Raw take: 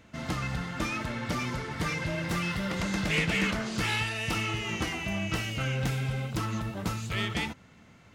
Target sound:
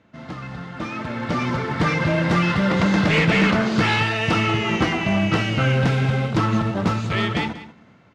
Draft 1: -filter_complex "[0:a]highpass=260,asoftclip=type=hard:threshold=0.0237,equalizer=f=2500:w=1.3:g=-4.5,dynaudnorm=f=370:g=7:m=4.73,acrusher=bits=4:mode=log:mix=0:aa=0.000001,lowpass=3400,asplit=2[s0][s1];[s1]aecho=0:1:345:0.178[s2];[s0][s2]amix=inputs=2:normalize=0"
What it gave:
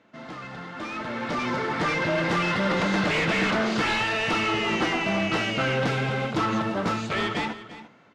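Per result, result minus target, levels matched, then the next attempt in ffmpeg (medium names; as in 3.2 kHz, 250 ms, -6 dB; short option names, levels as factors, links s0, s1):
echo 158 ms late; hard clipper: distortion +10 dB; 125 Hz band -6.0 dB
-filter_complex "[0:a]highpass=260,asoftclip=type=hard:threshold=0.0237,equalizer=f=2500:w=1.3:g=-4.5,dynaudnorm=f=370:g=7:m=4.73,acrusher=bits=4:mode=log:mix=0:aa=0.000001,lowpass=3400,asplit=2[s0][s1];[s1]aecho=0:1:187:0.178[s2];[s0][s2]amix=inputs=2:normalize=0"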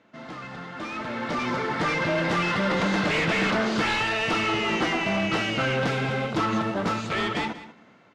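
hard clipper: distortion +10 dB; 125 Hz band -6.5 dB
-filter_complex "[0:a]highpass=260,asoftclip=type=hard:threshold=0.0631,equalizer=f=2500:w=1.3:g=-4.5,dynaudnorm=f=370:g=7:m=4.73,acrusher=bits=4:mode=log:mix=0:aa=0.000001,lowpass=3400,asplit=2[s0][s1];[s1]aecho=0:1:187:0.178[s2];[s0][s2]amix=inputs=2:normalize=0"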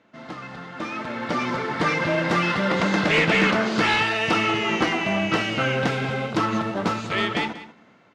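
125 Hz band -7.0 dB
-filter_complex "[0:a]highpass=110,asoftclip=type=hard:threshold=0.0631,equalizer=f=2500:w=1.3:g=-4.5,dynaudnorm=f=370:g=7:m=4.73,acrusher=bits=4:mode=log:mix=0:aa=0.000001,lowpass=3400,asplit=2[s0][s1];[s1]aecho=0:1:187:0.178[s2];[s0][s2]amix=inputs=2:normalize=0"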